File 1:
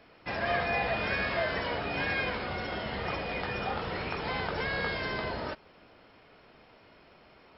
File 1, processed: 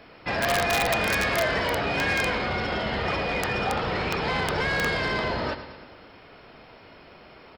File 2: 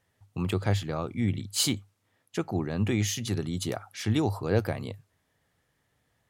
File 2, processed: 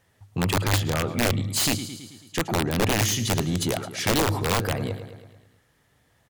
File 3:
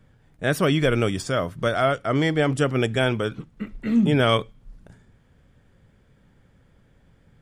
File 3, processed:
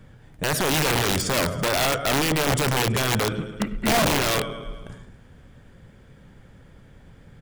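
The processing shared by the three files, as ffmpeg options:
-af "alimiter=limit=0.119:level=0:latency=1:release=13,acontrast=30,aecho=1:1:109|218|327|436|545|654:0.224|0.132|0.0779|0.046|0.0271|0.016,aeval=exprs='(mod(5.96*val(0)+1,2)-1)/5.96':c=same,aeval=exprs='0.168*(cos(1*acos(clip(val(0)/0.168,-1,1)))-cos(1*PI/2))+0.0133*(cos(5*acos(clip(val(0)/0.168,-1,1)))-cos(5*PI/2))':c=same"

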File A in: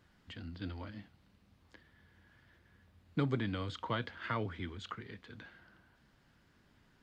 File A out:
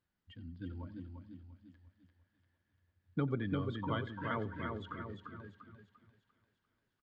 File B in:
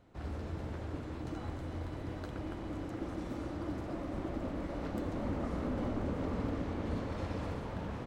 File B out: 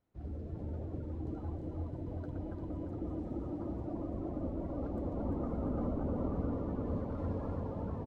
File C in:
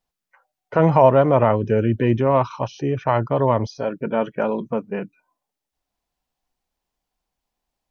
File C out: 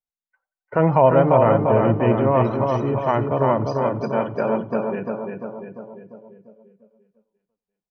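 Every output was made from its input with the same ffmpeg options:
-filter_complex "[0:a]asplit=2[s0][s1];[s1]aecho=0:1:346|692|1038|1384|1730|2076|2422|2768:0.631|0.36|0.205|0.117|0.0666|0.038|0.0216|0.0123[s2];[s0][s2]amix=inputs=2:normalize=0,afftdn=nr=18:nf=-40,asplit=2[s3][s4];[s4]adelay=90,lowpass=f=4300:p=1,volume=0.112,asplit=2[s5][s6];[s6]adelay=90,lowpass=f=4300:p=1,volume=0.37,asplit=2[s7][s8];[s8]adelay=90,lowpass=f=4300:p=1,volume=0.37[s9];[s5][s7][s9]amix=inputs=3:normalize=0[s10];[s3][s10]amix=inputs=2:normalize=0,volume=0.841"

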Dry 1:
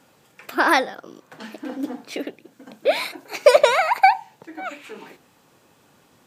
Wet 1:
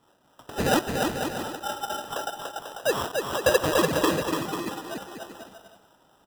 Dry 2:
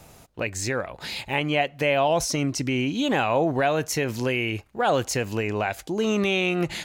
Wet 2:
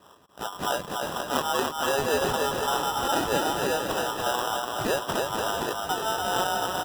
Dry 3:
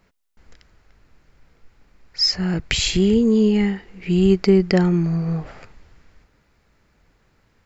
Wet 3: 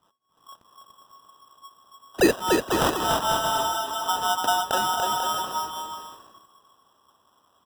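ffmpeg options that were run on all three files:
-filter_complex "[0:a]aeval=exprs='val(0)*sin(2*PI*1100*n/s)':c=same,asplit=2[s0][s1];[s1]acrusher=bits=5:mix=0:aa=0.000001,volume=0.562[s2];[s0][s2]amix=inputs=2:normalize=0,lowshelf=f=320:g=-7,acrossover=split=430|2500[s3][s4][s5];[s4]acompressor=threshold=0.0562:ratio=6[s6];[s3][s6][s5]amix=inputs=3:normalize=0,acrusher=samples=20:mix=1:aa=0.000001,lowshelf=f=63:g=-11.5,aecho=1:1:290|493|635.1|734.6|804.2:0.631|0.398|0.251|0.158|0.1,volume=0.841"

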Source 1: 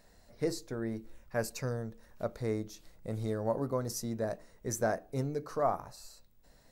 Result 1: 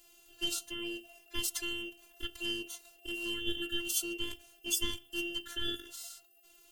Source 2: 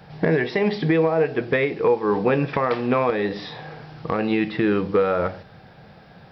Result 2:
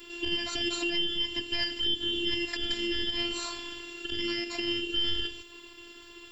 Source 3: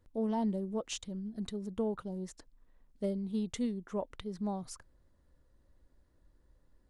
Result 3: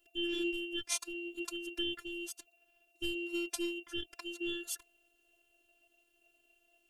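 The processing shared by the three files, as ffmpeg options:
-filter_complex "[0:a]afftfilt=real='real(if(lt(b,960),b+48*(1-2*mod(floor(b/48),2)),b),0)':imag='imag(if(lt(b,960),b+48*(1-2*mod(floor(b/48),2)),b),0)':win_size=2048:overlap=0.75,lowshelf=f=190:g=9.5,acrossover=split=1000[s0][s1];[s0]acompressor=threshold=0.01:ratio=16[s2];[s2][s1]amix=inputs=2:normalize=0,alimiter=limit=0.119:level=0:latency=1:release=128,crystalizer=i=4.5:c=0,aeval=exprs='val(0)*sin(2*PI*1600*n/s)':c=same,afftfilt=real='hypot(re,im)*cos(PI*b)':imag='0':win_size=512:overlap=0.75"

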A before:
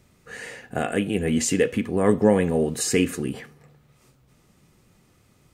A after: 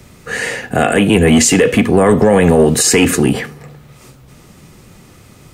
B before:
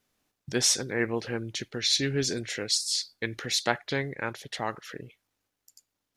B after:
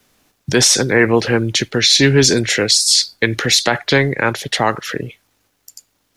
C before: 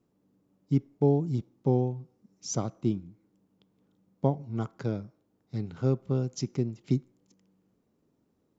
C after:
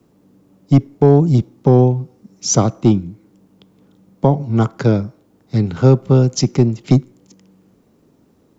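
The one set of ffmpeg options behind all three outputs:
-filter_complex "[0:a]acrossover=split=110|450|2200[s0][s1][s2][s3];[s1]asoftclip=type=tanh:threshold=0.0596[s4];[s0][s4][s2][s3]amix=inputs=4:normalize=0,alimiter=level_in=8.41:limit=0.891:release=50:level=0:latency=1,volume=0.891"

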